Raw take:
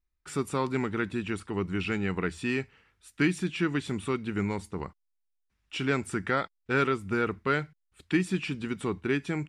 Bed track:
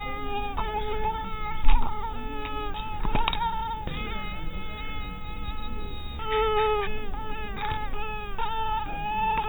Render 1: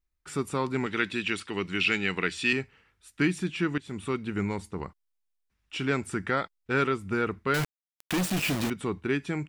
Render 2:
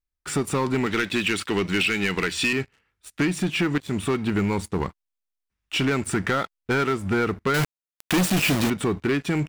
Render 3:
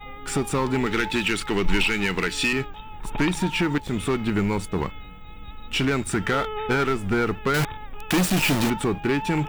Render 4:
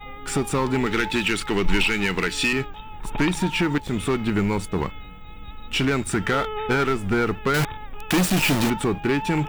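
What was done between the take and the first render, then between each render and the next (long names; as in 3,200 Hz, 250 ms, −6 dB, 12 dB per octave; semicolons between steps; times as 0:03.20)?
0:00.86–0:02.53: meter weighting curve D; 0:03.78–0:04.20: fade in equal-power, from −18 dB; 0:07.54–0:08.70: log-companded quantiser 2 bits
downward compressor 12 to 1, threshold −27 dBFS, peak gain reduction 8 dB; leveller curve on the samples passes 3
mix in bed track −6.5 dB
level +1 dB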